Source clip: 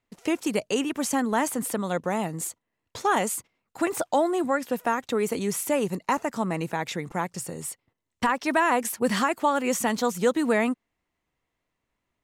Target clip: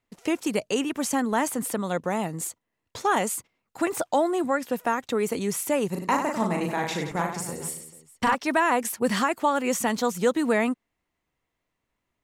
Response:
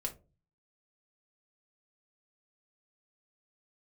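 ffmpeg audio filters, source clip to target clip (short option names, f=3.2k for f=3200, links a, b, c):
-filter_complex "[0:a]asettb=1/sr,asplit=3[a][b][c];[a]atrim=end=5.904[d];[b]atrim=start=5.9:end=8.35,asetpts=PTS-STARTPTS,afade=t=in:d=0.004:c=qsin,afade=t=out:st=2.446:d=0.004:c=qsin,aecho=1:1:40|96|174.4|284.2|437.8:0.631|0.398|0.251|0.158|0.1,atrim=end_sample=108045[e];[c]atrim=start=8.346[f];[d][e]acrossfade=d=0.004:c1=hsin:c2=qsin[g];[g][f]acrossfade=d=0.004:c1=qsin:c2=hsin"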